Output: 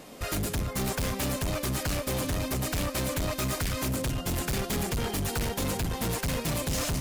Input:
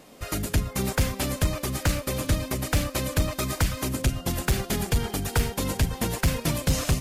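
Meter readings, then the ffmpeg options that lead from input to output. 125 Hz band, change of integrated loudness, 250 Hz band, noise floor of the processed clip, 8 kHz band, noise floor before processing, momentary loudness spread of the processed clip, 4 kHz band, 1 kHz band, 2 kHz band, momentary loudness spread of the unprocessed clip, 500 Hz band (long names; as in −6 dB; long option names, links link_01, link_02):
−5.0 dB, −3.0 dB, −2.5 dB, −39 dBFS, −2.0 dB, −42 dBFS, 1 LU, −2.0 dB, −1.5 dB, −3.0 dB, 2 LU, −1.5 dB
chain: -af "volume=30.5dB,asoftclip=hard,volume=-30.5dB,volume=3.5dB"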